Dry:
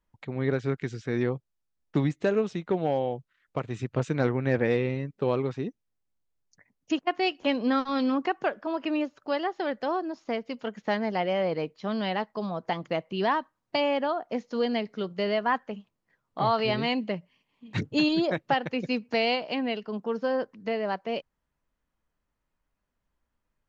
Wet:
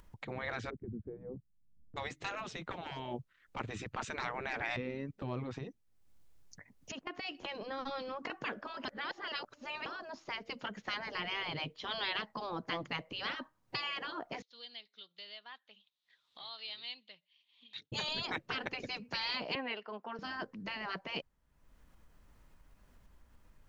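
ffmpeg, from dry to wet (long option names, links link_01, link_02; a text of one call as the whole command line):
ffmpeg -i in.wav -filter_complex "[0:a]asplit=3[link_01][link_02][link_03];[link_01]afade=type=out:start_time=0.69:duration=0.02[link_04];[link_02]lowpass=frequency=200:width_type=q:width=1.6,afade=type=in:start_time=0.69:duration=0.02,afade=type=out:start_time=1.96:duration=0.02[link_05];[link_03]afade=type=in:start_time=1.96:duration=0.02[link_06];[link_04][link_05][link_06]amix=inputs=3:normalize=0,asettb=1/sr,asplit=3[link_07][link_08][link_09];[link_07]atrim=end=4.764[link_10];[link_08]atrim=start=4.76:end=8.3,asetpts=PTS-STARTPTS,afade=type=in:duration=0.004:curve=qsin,afade=type=out:start_time=3.536:duration=0.004:curve=qsin,acompressor=threshold=-32dB:ratio=6:attack=3.2:release=140:knee=1:detection=peak[link_11];[link_09]atrim=start=8.296[link_12];[link_10][link_11]acrossfade=duration=0.004:curve1=hsin:curve2=qsin[link_13];[link_13][link_12]acrossfade=duration=0.004:curve1=qsin:curve2=hsin,asettb=1/sr,asplit=3[link_14][link_15][link_16];[link_14]atrim=end=11.314[link_17];[link_15]atrim=start=11.31:end=12.25,asetpts=PTS-STARTPTS,afade=type=in:duration=0.004:curve=qsin,afade=type=out:start_time=0.936:duration=0.004:curve=qsin,equalizer=frequency=3300:width=3.4:gain=10.5[link_18];[link_16]atrim=start=12.246[link_19];[link_17][link_18]acrossfade=duration=0.004:curve1=hsin:curve2=qsin[link_20];[link_20][link_19]acrossfade=duration=0.004:curve1=qsin:curve2=hsin,asettb=1/sr,asplit=3[link_21][link_22][link_23];[link_21]atrim=end=14.424[link_24];[link_22]atrim=start=14.42:end=17.92,asetpts=PTS-STARTPTS,afade=type=in:duration=0.004:curve=qsin,afade=type=out:start_time=3.496:duration=0.004:curve=qsin,bandpass=frequency=3700:width_type=q:width=7.3[link_25];[link_23]atrim=start=17.916[link_26];[link_24][link_25]acrossfade=duration=0.004:curve1=hsin:curve2=qsin[link_27];[link_27][link_26]acrossfade=duration=0.004:curve1=qsin:curve2=hsin,asettb=1/sr,asplit=3[link_28][link_29][link_30];[link_28]atrim=end=19.554[link_31];[link_29]atrim=start=19.55:end=20.19,asetpts=PTS-STARTPTS,afade=type=in:duration=0.004:curve=qsin,afade=type=out:start_time=0.636:duration=0.004:curve=qsin,highpass=670,lowpass=2700[link_32];[link_30]atrim=start=20.186[link_33];[link_31][link_32]acrossfade=duration=0.004:curve1=hsin:curve2=qsin[link_34];[link_34][link_33]acrossfade=duration=0.004:curve1=qsin:curve2=hsin,asplit=3[link_35][link_36][link_37];[link_35]atrim=end=8.852[link_38];[link_36]atrim=start=8.848:end=9.862,asetpts=PTS-STARTPTS,areverse[link_39];[link_37]atrim=start=9.858[link_40];[link_38][link_39]acrossfade=duration=0.004:curve1=hsin:curve2=hsin[link_41];[link_41][link_40]acrossfade=duration=0.004:curve1=hsin:curve2=hsin,afftfilt=real='re*lt(hypot(re,im),0.1)':imag='im*lt(hypot(re,im),0.1)':win_size=1024:overlap=0.75,lowshelf=frequency=150:gain=7,acompressor=mode=upward:threshold=-47dB:ratio=2.5" out.wav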